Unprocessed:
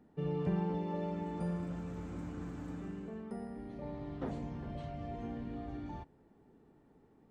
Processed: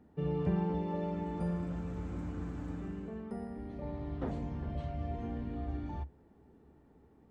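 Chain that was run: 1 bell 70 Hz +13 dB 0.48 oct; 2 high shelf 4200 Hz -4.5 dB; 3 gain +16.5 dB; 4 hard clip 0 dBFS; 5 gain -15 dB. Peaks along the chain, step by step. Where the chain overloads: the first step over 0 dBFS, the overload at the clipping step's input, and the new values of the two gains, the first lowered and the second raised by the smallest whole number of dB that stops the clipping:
-21.5, -21.5, -5.0, -5.0, -20.0 dBFS; no overload

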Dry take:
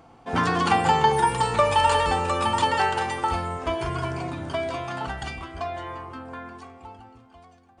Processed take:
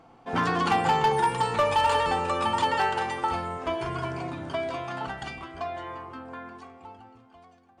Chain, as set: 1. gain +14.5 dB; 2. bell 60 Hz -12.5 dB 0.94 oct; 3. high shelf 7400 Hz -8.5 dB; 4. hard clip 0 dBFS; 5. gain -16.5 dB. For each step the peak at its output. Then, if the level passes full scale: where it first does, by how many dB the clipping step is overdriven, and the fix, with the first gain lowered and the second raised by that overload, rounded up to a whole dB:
+7.5, +7.0, +7.0, 0.0, -16.5 dBFS; step 1, 7.0 dB; step 1 +7.5 dB, step 5 -9.5 dB

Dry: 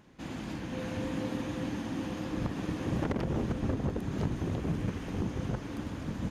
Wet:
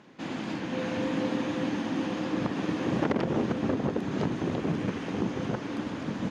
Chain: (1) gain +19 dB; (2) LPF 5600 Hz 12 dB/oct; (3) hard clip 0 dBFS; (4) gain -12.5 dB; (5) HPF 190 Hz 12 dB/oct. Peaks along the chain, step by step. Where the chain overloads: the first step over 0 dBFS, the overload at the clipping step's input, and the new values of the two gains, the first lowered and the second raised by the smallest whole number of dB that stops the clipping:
-1.5, -1.5, -1.5, -14.0, -14.0 dBFS; no overload

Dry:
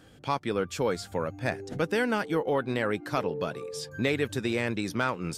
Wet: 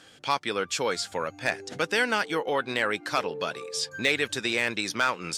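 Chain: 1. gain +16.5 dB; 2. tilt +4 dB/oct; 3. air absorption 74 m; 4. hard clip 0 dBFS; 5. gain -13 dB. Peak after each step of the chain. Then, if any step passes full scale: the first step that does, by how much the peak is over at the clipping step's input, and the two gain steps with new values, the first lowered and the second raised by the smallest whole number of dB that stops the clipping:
+2.0, +7.0, +5.0, 0.0, -13.0 dBFS; step 1, 5.0 dB; step 1 +11.5 dB, step 5 -8 dB

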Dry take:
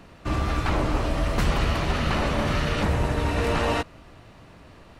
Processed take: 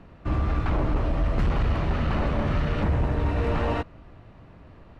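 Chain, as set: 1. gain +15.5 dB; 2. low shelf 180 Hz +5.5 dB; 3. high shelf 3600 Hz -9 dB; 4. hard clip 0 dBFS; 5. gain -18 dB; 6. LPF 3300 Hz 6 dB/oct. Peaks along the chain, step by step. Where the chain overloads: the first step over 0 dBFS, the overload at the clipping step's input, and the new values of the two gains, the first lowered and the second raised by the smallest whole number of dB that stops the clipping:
+4.5, +8.5, +8.5, 0.0, -18.0, -18.0 dBFS; step 1, 8.5 dB; step 1 +6.5 dB, step 5 -9 dB

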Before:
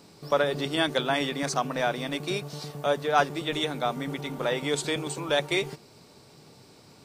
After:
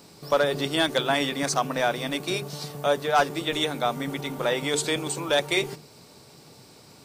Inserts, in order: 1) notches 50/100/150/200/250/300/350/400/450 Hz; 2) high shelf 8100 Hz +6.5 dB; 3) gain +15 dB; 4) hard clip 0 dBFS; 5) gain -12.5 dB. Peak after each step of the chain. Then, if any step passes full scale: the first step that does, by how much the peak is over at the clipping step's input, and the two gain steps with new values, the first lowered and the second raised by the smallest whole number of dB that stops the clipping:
-8.0, -7.5, +7.5, 0.0, -12.5 dBFS; step 3, 7.5 dB; step 3 +7 dB, step 5 -4.5 dB

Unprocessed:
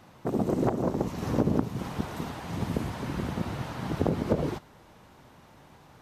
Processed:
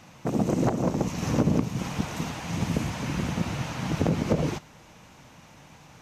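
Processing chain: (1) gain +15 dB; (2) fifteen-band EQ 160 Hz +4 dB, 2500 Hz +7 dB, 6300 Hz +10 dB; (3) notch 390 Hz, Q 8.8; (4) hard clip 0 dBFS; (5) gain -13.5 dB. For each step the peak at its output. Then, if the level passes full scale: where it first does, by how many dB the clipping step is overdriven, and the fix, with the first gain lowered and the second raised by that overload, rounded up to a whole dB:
+4.5, +5.5, +5.0, 0.0, -13.5 dBFS; step 1, 5.0 dB; step 1 +10 dB, step 5 -8.5 dB

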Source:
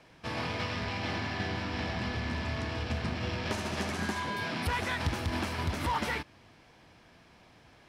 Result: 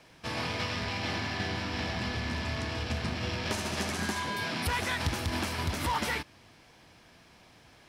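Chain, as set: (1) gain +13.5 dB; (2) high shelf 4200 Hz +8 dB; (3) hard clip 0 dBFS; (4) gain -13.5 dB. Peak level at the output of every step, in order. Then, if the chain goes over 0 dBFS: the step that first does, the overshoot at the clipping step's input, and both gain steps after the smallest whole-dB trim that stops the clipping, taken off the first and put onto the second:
-6.5, -3.5, -3.5, -17.0 dBFS; no overload

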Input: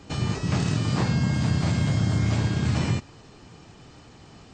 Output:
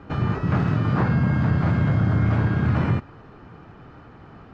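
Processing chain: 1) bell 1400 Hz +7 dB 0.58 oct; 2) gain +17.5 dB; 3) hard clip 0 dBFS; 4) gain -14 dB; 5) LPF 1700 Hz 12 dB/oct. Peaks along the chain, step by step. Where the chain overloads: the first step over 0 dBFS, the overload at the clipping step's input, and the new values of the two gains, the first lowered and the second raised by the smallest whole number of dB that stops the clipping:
-13.5, +4.0, 0.0, -14.0, -13.5 dBFS; step 2, 4.0 dB; step 2 +13.5 dB, step 4 -10 dB

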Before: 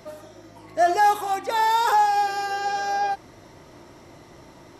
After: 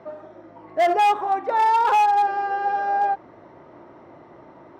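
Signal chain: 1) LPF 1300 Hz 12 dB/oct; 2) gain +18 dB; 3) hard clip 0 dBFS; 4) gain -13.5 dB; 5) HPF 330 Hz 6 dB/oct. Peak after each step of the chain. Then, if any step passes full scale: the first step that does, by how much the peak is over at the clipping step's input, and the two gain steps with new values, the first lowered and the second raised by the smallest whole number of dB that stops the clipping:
-11.5, +6.5, 0.0, -13.5, -10.5 dBFS; step 2, 6.5 dB; step 2 +11 dB, step 4 -6.5 dB

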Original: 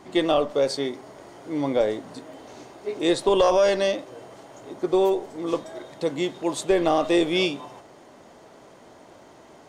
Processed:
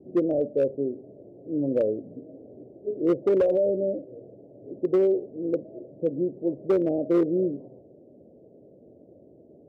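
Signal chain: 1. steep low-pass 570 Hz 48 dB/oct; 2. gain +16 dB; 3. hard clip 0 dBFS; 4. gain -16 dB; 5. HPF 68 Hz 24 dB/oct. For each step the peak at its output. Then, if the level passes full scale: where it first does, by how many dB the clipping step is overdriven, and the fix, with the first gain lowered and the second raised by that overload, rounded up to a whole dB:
-11.0, +5.0, 0.0, -16.0, -13.0 dBFS; step 2, 5.0 dB; step 2 +11 dB, step 4 -11 dB

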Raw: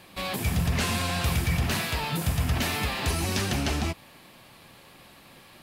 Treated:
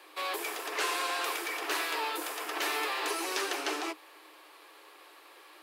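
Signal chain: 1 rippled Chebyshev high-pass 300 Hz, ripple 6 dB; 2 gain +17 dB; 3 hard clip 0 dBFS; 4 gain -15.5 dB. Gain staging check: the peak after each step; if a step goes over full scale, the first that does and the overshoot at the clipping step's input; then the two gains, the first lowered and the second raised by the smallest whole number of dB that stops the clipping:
-19.0, -2.0, -2.0, -17.5 dBFS; no overload

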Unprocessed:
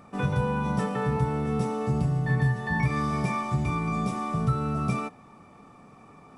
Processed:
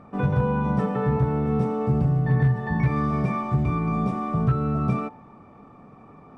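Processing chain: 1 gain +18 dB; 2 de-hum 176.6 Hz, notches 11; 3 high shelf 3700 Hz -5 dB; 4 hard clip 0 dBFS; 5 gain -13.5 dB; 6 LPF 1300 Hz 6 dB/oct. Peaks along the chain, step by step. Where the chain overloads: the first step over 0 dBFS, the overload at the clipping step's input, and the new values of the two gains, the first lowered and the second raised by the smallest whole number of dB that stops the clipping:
+5.5, +4.5, +4.5, 0.0, -13.5, -13.5 dBFS; step 1, 4.5 dB; step 1 +13 dB, step 5 -8.5 dB

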